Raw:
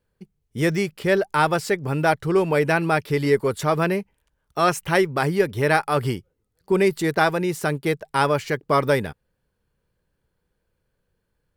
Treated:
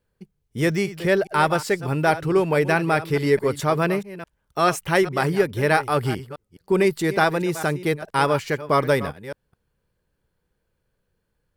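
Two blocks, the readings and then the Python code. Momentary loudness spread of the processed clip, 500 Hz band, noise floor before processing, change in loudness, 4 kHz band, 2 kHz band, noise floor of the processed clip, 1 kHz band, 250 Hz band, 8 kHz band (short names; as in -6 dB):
12 LU, 0.0 dB, -75 dBFS, 0.0 dB, 0.0 dB, 0.0 dB, -75 dBFS, 0.0 dB, 0.0 dB, 0.0 dB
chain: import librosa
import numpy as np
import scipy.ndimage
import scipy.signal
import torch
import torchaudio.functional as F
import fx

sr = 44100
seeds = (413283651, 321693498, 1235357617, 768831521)

y = fx.reverse_delay(x, sr, ms=212, wet_db=-14)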